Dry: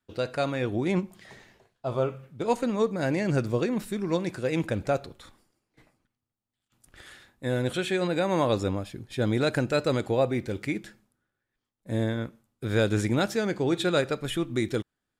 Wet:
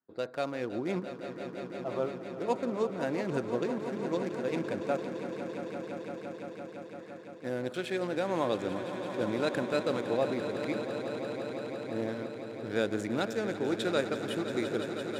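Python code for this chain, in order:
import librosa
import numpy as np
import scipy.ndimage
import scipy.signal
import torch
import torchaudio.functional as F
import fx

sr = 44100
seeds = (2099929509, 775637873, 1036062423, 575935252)

p1 = fx.wiener(x, sr, points=15)
p2 = scipy.signal.sosfilt(scipy.signal.butter(2, 210.0, 'highpass', fs=sr, output='sos'), p1)
p3 = p2 + fx.echo_swell(p2, sr, ms=170, loudest=5, wet_db=-12.0, dry=0)
y = p3 * librosa.db_to_amplitude(-5.0)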